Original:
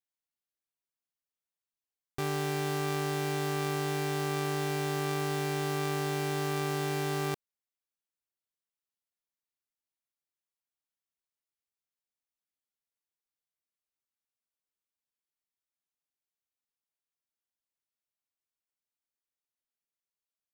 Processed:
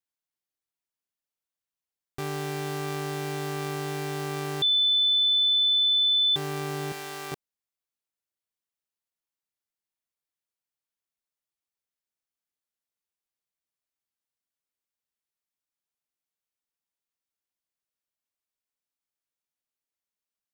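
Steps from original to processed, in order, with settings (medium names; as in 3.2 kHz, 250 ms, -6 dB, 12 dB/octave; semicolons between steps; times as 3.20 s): 4.62–6.36 s: bleep 3.51 kHz -19 dBFS; 6.92–7.32 s: high-pass 860 Hz 6 dB/octave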